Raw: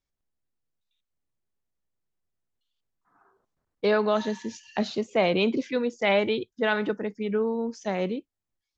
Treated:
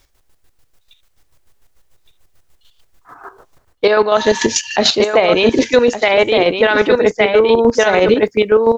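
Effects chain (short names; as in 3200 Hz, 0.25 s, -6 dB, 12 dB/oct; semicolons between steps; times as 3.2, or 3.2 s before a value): chopper 6.8 Hz, depth 65%, duty 35%; bell 200 Hz -12 dB 0.89 oct; echo 1.165 s -8 dB; reverse; compressor 8:1, threshold -36 dBFS, peak gain reduction 16 dB; reverse; maximiser +32.5 dB; gain -1 dB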